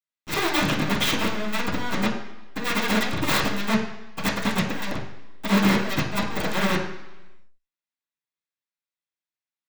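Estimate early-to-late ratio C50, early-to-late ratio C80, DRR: 6.0 dB, 9.0 dB, −12.0 dB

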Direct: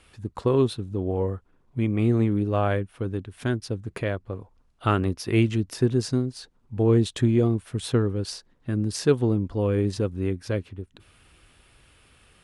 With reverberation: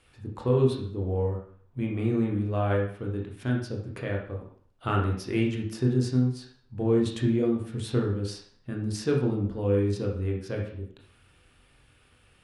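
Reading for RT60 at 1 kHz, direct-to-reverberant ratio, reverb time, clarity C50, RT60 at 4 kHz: 0.50 s, −1.0 dB, 0.50 s, 5.0 dB, 0.50 s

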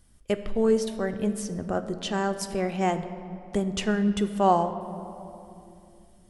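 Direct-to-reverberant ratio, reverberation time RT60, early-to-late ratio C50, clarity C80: 8.0 dB, 2.8 s, 11.0 dB, 12.0 dB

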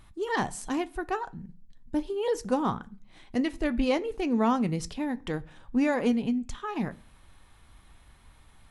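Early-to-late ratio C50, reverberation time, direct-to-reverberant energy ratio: 22.5 dB, 0.40 s, 11.0 dB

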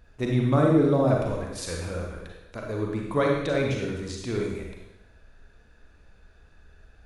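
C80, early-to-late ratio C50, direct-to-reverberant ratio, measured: 4.5 dB, 1.0 dB, −1.0 dB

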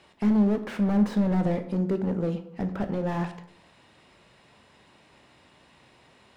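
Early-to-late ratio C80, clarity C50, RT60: 14.5 dB, 11.5 dB, 0.70 s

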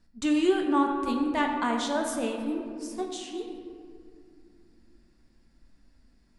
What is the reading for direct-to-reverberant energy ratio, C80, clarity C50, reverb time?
1.5 dB, 5.0 dB, 4.0 dB, 2.4 s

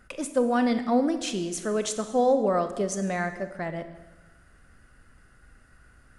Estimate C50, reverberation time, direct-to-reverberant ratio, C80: 10.5 dB, 1.2 s, 9.0 dB, 12.5 dB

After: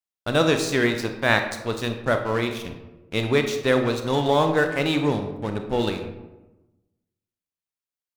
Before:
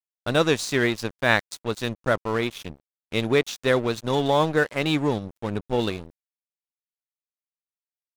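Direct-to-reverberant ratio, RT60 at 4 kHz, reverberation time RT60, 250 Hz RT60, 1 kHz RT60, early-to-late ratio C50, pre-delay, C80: 5.5 dB, 0.60 s, 1.1 s, 1.3 s, 1.0 s, 7.5 dB, 27 ms, 10.0 dB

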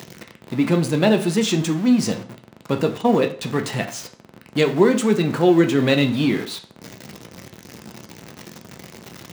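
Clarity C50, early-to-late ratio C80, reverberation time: 13.0 dB, 17.0 dB, 0.40 s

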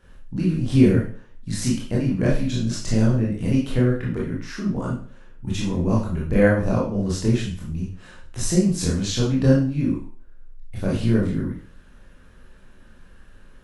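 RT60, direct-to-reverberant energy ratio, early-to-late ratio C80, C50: 0.45 s, −5.0 dB, 9.5 dB, 4.0 dB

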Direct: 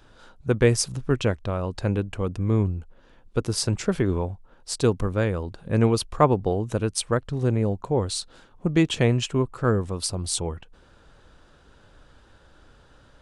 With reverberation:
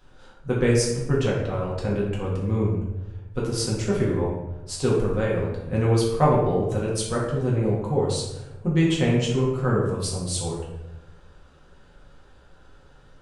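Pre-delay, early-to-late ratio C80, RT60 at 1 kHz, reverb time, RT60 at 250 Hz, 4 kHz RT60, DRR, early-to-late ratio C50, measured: 4 ms, 4.5 dB, 0.95 s, 1.1 s, 1.2 s, 0.60 s, −5.5 dB, 2.0 dB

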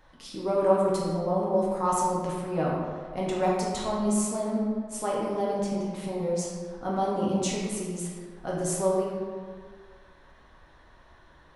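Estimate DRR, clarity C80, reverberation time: −5.0 dB, 1.5 dB, 1.8 s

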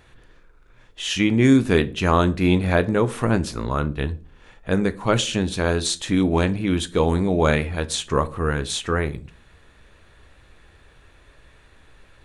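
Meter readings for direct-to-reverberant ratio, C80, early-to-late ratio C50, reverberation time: 11.5 dB, 24.5 dB, 19.5 dB, 0.40 s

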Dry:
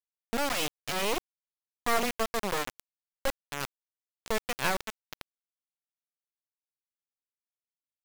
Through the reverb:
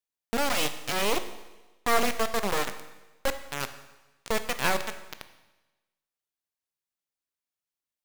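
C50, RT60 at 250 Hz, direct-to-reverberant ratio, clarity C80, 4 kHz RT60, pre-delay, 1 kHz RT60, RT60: 11.5 dB, 1.1 s, 9.5 dB, 13.0 dB, 1.1 s, 19 ms, 1.1 s, 1.1 s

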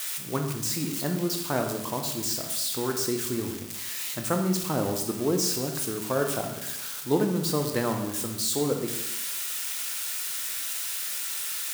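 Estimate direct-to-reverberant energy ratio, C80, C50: 3.5 dB, 9.0 dB, 6.5 dB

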